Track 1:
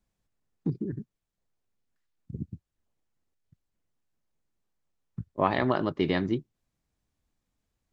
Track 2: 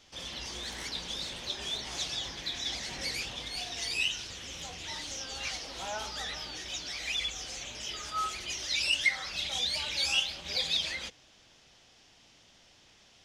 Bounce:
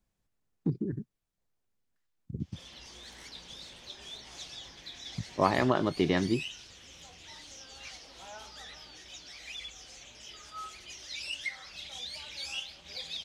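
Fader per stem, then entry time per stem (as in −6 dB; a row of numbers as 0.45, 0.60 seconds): −0.5, −9.5 decibels; 0.00, 2.40 seconds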